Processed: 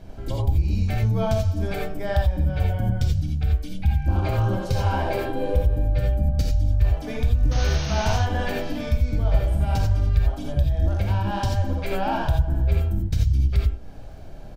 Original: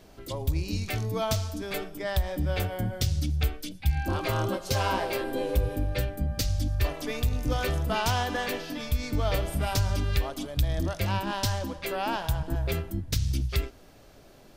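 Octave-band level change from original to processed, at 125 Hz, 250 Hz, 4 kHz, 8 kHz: +7.5, +3.5, -2.5, -4.0 dB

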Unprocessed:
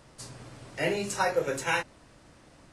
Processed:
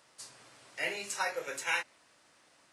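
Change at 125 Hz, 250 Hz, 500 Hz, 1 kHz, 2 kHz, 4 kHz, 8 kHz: -21.5, -16.0, -11.5, -7.0, -2.5, -2.5, -2.5 dB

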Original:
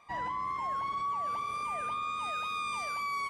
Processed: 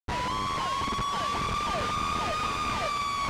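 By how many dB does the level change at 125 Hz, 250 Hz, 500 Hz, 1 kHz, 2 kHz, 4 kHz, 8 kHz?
+16.5, +15.0, +11.5, +4.0, +4.5, +11.0, +10.0 dB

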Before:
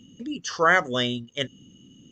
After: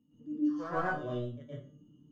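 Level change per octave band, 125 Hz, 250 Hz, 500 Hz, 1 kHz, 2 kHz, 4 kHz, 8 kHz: -4.5 dB, -2.0 dB, -11.0 dB, -11.5 dB, -16.5 dB, -28.5 dB, under -30 dB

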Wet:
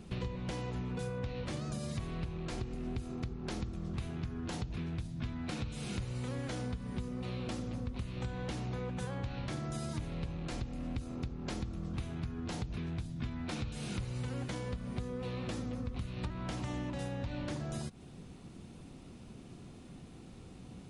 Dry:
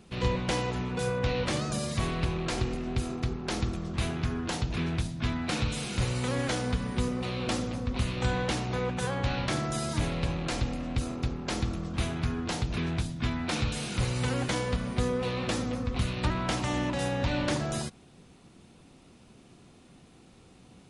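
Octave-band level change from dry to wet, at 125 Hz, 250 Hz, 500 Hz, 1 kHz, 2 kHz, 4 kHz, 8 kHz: -7.0, -7.5, -10.5, -12.0, -12.5, -12.5, -12.0 dB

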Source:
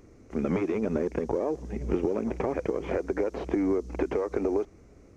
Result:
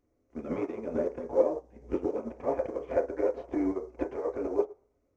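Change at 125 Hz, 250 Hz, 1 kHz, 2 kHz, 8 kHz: -11.0 dB, -5.0 dB, -2.0 dB, -7.0 dB, n/a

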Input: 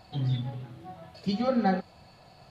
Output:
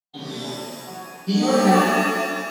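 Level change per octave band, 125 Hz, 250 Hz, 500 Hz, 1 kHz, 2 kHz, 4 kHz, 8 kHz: +2.5 dB, +9.0 dB, +11.0 dB, +11.5 dB, +17.5 dB, +13.5 dB, n/a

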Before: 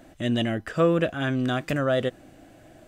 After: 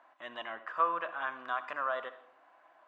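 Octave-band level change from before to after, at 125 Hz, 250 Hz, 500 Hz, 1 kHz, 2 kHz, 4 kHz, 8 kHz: under -40 dB, -29.0 dB, -15.5 dB, +0.5 dB, -6.0 dB, -15.0 dB, under -25 dB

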